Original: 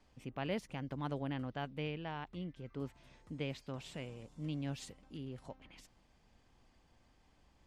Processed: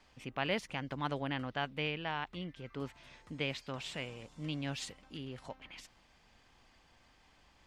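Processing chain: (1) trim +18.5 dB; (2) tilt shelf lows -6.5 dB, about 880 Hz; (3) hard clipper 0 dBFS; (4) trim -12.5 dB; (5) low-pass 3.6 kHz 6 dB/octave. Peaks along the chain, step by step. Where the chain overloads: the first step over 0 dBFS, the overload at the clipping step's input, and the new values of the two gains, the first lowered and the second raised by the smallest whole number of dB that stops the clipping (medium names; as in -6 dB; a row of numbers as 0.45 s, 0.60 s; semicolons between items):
-6.0 dBFS, -4.5 dBFS, -4.5 dBFS, -17.0 dBFS, -18.5 dBFS; nothing clips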